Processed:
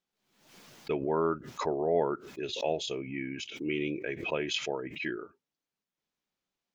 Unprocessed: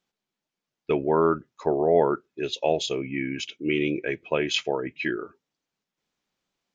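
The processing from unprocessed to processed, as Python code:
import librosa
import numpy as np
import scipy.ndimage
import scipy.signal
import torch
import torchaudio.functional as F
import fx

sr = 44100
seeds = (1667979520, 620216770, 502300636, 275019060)

y = fx.pre_swell(x, sr, db_per_s=75.0)
y = F.gain(torch.from_numpy(y), -7.5).numpy()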